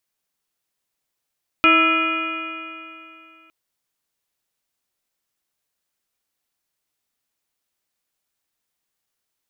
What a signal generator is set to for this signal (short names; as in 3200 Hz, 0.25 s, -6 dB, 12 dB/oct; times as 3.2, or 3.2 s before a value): stretched partials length 1.86 s, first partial 321 Hz, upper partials -7/-13.5/4/-13/-8/5/-5/-19 dB, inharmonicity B 0.0039, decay 2.75 s, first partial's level -18 dB